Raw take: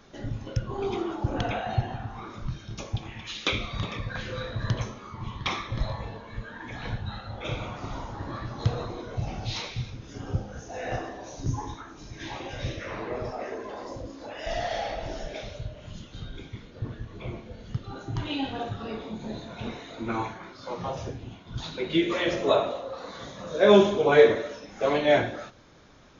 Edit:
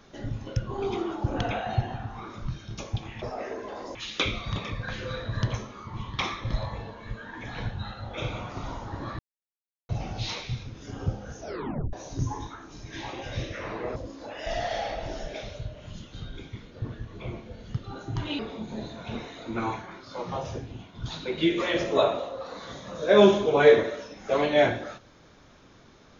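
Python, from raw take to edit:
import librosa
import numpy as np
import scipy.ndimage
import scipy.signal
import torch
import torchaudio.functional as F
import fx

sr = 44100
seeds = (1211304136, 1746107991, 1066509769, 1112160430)

y = fx.edit(x, sr, fx.silence(start_s=8.46, length_s=0.7),
    fx.tape_stop(start_s=10.68, length_s=0.52),
    fx.move(start_s=13.23, length_s=0.73, to_s=3.22),
    fx.cut(start_s=18.39, length_s=0.52), tone=tone)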